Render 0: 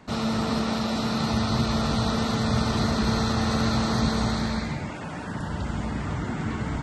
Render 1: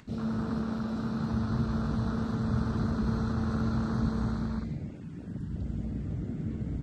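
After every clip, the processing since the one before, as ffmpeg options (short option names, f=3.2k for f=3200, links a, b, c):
-af "afwtdn=0.0355,equalizer=f=740:w=0.97:g=-10,acompressor=mode=upward:threshold=-39dB:ratio=2.5,volume=-3.5dB"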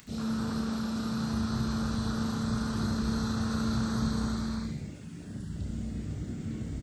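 -filter_complex "[0:a]crystalizer=i=6:c=0,asplit=2[a][b];[b]aecho=0:1:31|71:0.501|0.473[c];[a][c]amix=inputs=2:normalize=0,volume=-4dB"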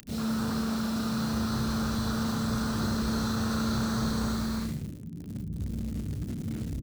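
-filter_complex "[0:a]acrossover=split=470[a][b];[a]asoftclip=type=tanh:threshold=-28dB[c];[b]acrusher=bits=7:mix=0:aa=0.000001[d];[c][d]amix=inputs=2:normalize=0,volume=3.5dB"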